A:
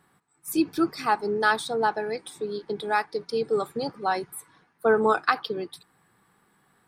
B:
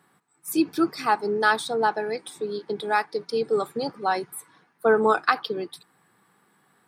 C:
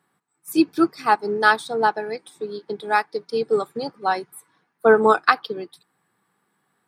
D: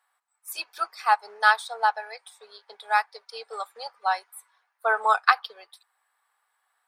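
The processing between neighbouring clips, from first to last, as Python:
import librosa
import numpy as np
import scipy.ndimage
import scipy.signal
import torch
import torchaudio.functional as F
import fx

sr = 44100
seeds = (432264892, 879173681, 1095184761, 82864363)

y1 = scipy.signal.sosfilt(scipy.signal.butter(2, 140.0, 'highpass', fs=sr, output='sos'), x)
y1 = y1 * 10.0 ** (1.5 / 20.0)
y2 = fx.upward_expand(y1, sr, threshold_db=-40.0, expansion=1.5)
y2 = y2 * 10.0 ** (5.5 / 20.0)
y3 = scipy.signal.sosfilt(scipy.signal.cheby2(4, 40, 330.0, 'highpass', fs=sr, output='sos'), y2)
y3 = y3 * 10.0 ** (-2.0 / 20.0)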